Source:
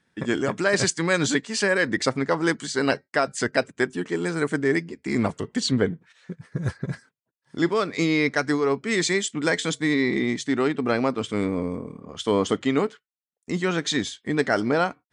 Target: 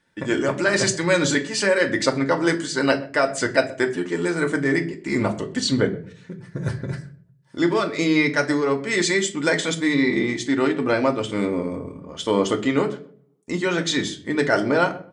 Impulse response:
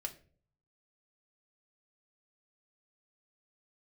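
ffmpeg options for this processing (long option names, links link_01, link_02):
-filter_complex "[0:a]asplit=2[link_01][link_02];[link_02]adelay=127,lowpass=frequency=1900:poles=1,volume=-21dB,asplit=2[link_03][link_04];[link_04]adelay=127,lowpass=frequency=1900:poles=1,volume=0.23[link_05];[link_01][link_03][link_05]amix=inputs=3:normalize=0[link_06];[1:a]atrim=start_sample=2205[link_07];[link_06][link_07]afir=irnorm=-1:irlink=0,volume=4dB"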